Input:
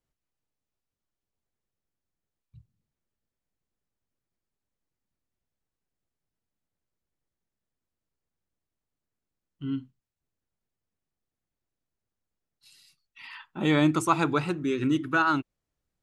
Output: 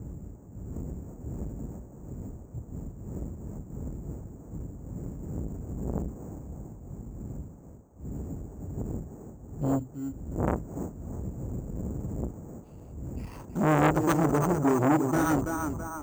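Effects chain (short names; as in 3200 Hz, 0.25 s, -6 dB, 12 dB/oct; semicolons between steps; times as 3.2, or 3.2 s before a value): median filter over 25 samples; wind noise 230 Hz -44 dBFS; HPF 42 Hz 24 dB/oct; tilt -3 dB/oct; in parallel at +1 dB: compressor, threshold -40 dBFS, peak gain reduction 25.5 dB; on the sum: narrowing echo 0.329 s, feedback 60%, band-pass 840 Hz, level -4 dB; careless resampling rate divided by 6×, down filtered, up hold; core saturation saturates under 1100 Hz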